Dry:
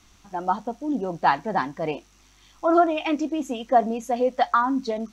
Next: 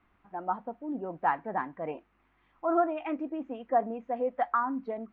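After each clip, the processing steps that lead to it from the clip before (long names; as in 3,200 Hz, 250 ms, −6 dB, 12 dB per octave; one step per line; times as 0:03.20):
low-pass filter 2,100 Hz 24 dB per octave
low-shelf EQ 160 Hz −8.5 dB
level −7 dB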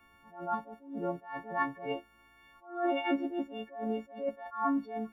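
every partial snapped to a pitch grid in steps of 4 semitones
level that may rise only so fast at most 130 dB per second
level +3.5 dB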